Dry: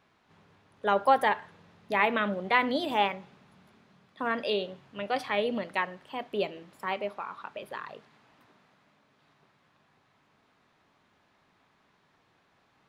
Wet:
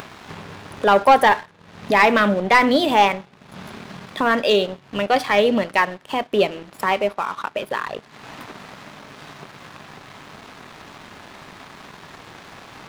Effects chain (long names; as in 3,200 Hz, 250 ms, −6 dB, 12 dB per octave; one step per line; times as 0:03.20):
upward compression, threshold −32 dBFS
leveller curve on the samples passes 2
level +5 dB